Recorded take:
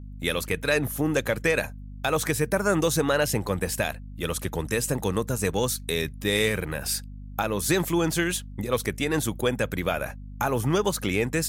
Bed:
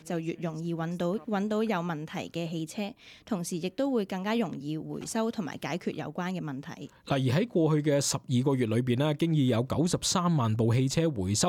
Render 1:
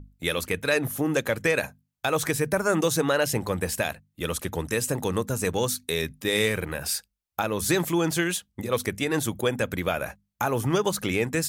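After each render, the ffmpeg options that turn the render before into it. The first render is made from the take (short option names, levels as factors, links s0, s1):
-af "bandreject=f=50:t=h:w=6,bandreject=f=100:t=h:w=6,bandreject=f=150:t=h:w=6,bandreject=f=200:t=h:w=6,bandreject=f=250:t=h:w=6"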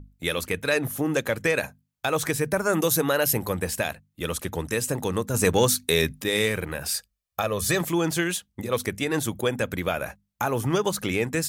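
-filter_complex "[0:a]asettb=1/sr,asplit=3[s0][s1][s2];[s0]atrim=end=2.734[s3];[s1]atrim=start=2.73:end=3.53,asetpts=PTS-STARTPTS,afade=t=in:d=0.004:c=qsin,afade=t=out:st=0.796:d=0.004:c=qsin,equalizer=f=12000:t=o:w=0.36:g=15[s4];[s2]atrim=start=3.526[s5];[s3][s4]acrossfade=d=0.004:c1=hsin:c2=qsin[s6];[s6][s5]acrossfade=d=0.004:c1=qsin:c2=hsin,asettb=1/sr,asplit=3[s7][s8][s9];[s7]atrim=end=5.344[s10];[s8]atrim=start=5.34:end=6.24,asetpts=PTS-STARTPTS,afade=t=in:d=0.004:c=qsin,afade=t=out:st=0.896:d=0.004:c=qsin,acontrast=47[s11];[s9]atrim=start=6.236[s12];[s10][s11]acrossfade=d=0.004:c1=hsin:c2=qsin[s13];[s13][s12]acrossfade=d=0.004:c1=qsin:c2=hsin,asettb=1/sr,asplit=3[s14][s15][s16];[s14]atrim=end=6.944[s17];[s15]atrim=start=6.94:end=7.81,asetpts=PTS-STARTPTS,afade=t=in:d=0.004:c=qsin,afade=t=out:st=0.866:d=0.004:c=qsin,aecho=1:1:1.7:0.56,atrim=end_sample=38367[s18];[s16]atrim=start=7.806[s19];[s17][s18]acrossfade=d=0.004:c1=hsin:c2=qsin[s20];[s20][s19]acrossfade=d=0.004:c1=qsin:c2=hsin"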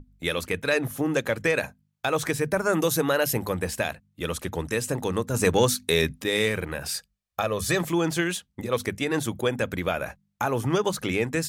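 -af "highshelf=f=9000:g=-8,bandreject=f=50:t=h:w=6,bandreject=f=100:t=h:w=6,bandreject=f=150:t=h:w=6,bandreject=f=200:t=h:w=6"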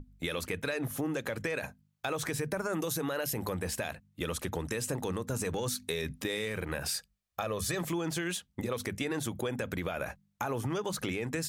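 -af "alimiter=limit=0.119:level=0:latency=1:release=30,acompressor=threshold=0.0316:ratio=6"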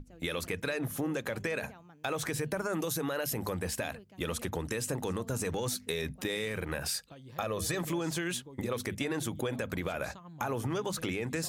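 -filter_complex "[1:a]volume=0.0668[s0];[0:a][s0]amix=inputs=2:normalize=0"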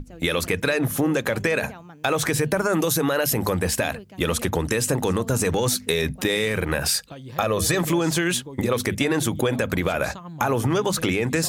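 -af "volume=3.76"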